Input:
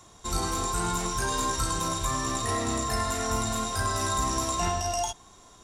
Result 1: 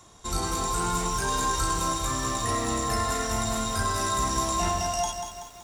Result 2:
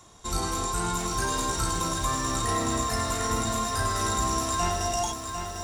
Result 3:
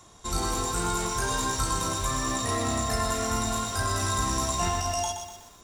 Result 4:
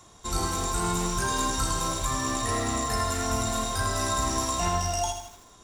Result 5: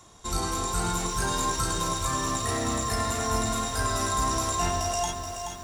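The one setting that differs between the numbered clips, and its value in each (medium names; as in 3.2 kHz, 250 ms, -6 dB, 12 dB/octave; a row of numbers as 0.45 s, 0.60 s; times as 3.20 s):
bit-crushed delay, time: 189 ms, 750 ms, 123 ms, 80 ms, 427 ms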